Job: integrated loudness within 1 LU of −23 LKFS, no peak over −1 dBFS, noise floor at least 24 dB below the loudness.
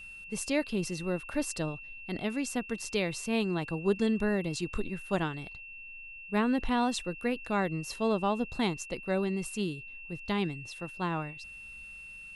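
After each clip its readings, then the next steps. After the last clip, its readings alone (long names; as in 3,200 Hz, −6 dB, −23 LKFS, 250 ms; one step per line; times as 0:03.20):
interfering tone 2,700 Hz; level of the tone −44 dBFS; integrated loudness −32.5 LKFS; sample peak −16.0 dBFS; target loudness −23.0 LKFS
→ notch filter 2,700 Hz, Q 30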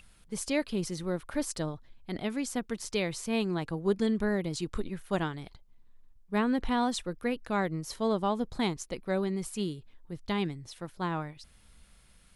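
interfering tone none found; integrated loudness −32.5 LKFS; sample peak −16.0 dBFS; target loudness −23.0 LKFS
→ level +9.5 dB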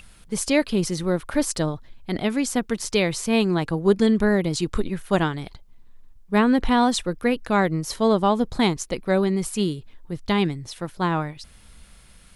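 integrated loudness −23.0 LKFS; sample peak −6.5 dBFS; background noise floor −50 dBFS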